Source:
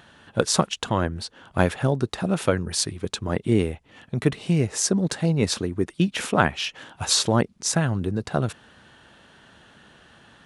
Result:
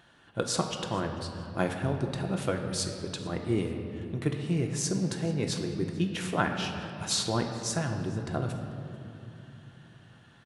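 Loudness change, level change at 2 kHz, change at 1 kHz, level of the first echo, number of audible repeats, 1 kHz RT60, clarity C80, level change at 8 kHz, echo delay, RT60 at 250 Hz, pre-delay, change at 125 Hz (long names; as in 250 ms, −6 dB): −7.5 dB, −7.5 dB, −7.0 dB, −22.5 dB, 2, 2.7 s, 6.5 dB, −8.0 dB, 441 ms, 4.1 s, 3 ms, −6.5 dB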